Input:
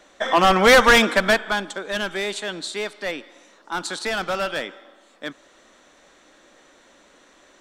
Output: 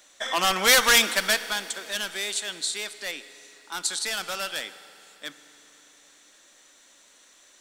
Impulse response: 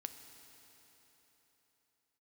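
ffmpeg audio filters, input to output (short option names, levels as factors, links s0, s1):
-filter_complex "[0:a]crystalizer=i=9:c=0,asplit=2[s0][s1];[1:a]atrim=start_sample=2205[s2];[s1][s2]afir=irnorm=-1:irlink=0,volume=1.12[s3];[s0][s3]amix=inputs=2:normalize=0,volume=0.126"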